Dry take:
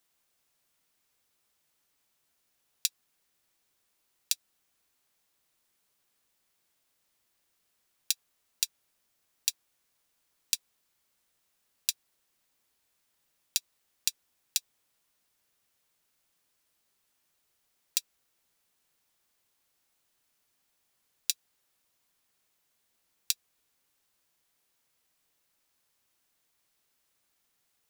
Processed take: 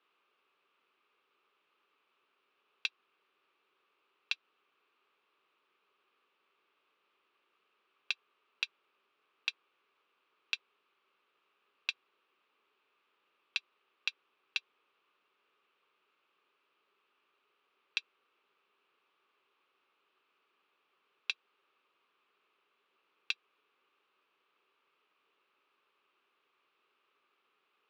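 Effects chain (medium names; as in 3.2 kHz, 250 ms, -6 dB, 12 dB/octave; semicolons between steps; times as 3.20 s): hard clipper -13.5 dBFS, distortion -8 dB; cabinet simulation 340–3200 Hz, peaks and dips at 400 Hz +10 dB, 690 Hz -6 dB, 1.2 kHz +10 dB, 1.9 kHz -5 dB, 2.6 kHz +6 dB; trim +4 dB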